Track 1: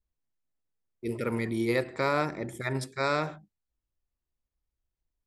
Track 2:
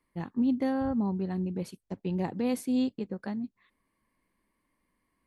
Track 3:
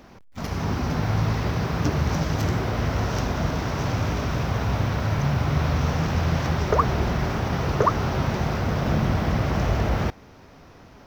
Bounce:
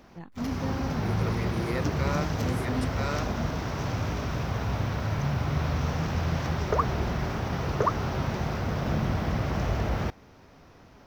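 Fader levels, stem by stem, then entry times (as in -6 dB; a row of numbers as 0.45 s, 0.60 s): -6.0 dB, -7.0 dB, -5.0 dB; 0.00 s, 0.00 s, 0.00 s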